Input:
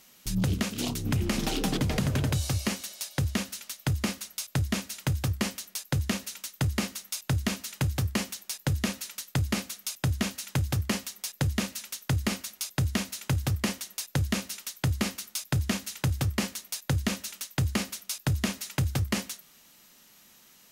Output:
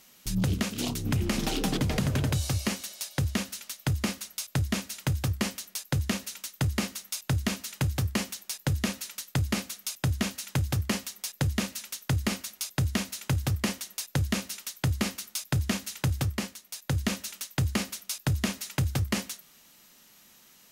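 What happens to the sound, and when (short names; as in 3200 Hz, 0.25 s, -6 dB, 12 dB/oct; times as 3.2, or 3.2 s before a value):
16.2–17.01 dip -8.5 dB, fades 0.39 s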